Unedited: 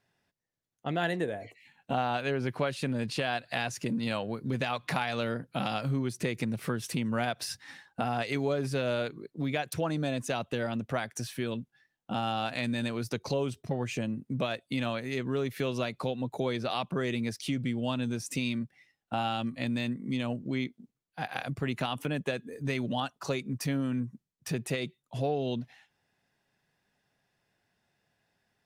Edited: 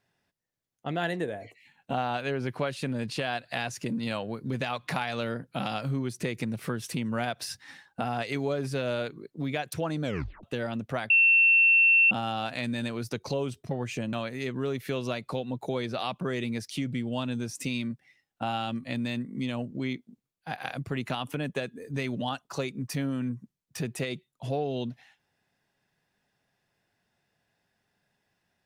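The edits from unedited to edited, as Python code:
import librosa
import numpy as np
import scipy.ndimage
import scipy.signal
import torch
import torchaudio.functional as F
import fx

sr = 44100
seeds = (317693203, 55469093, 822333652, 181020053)

y = fx.edit(x, sr, fx.tape_stop(start_s=10.04, length_s=0.39),
    fx.bleep(start_s=11.1, length_s=1.01, hz=2700.0, db=-16.5),
    fx.cut(start_s=14.13, length_s=0.71), tone=tone)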